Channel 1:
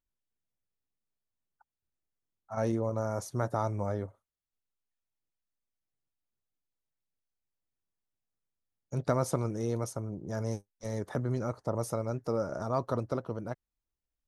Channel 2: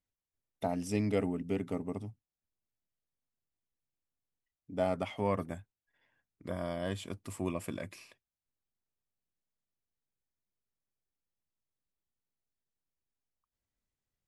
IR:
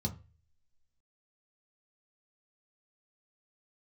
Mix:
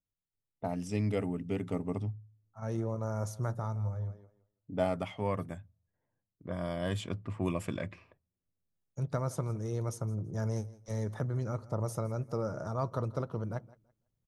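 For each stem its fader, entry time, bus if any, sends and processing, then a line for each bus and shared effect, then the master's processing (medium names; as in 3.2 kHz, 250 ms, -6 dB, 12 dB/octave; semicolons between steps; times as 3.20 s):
-5.0 dB, 0.05 s, send -18.5 dB, echo send -21 dB, auto duck -22 dB, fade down 1.35 s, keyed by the second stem
+2.5 dB, 0.00 s, send -22 dB, no echo send, level-controlled noise filter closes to 600 Hz, open at -31 dBFS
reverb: on, RT60 0.30 s, pre-delay 3 ms
echo: feedback delay 166 ms, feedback 20%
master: gain riding within 4 dB 0.5 s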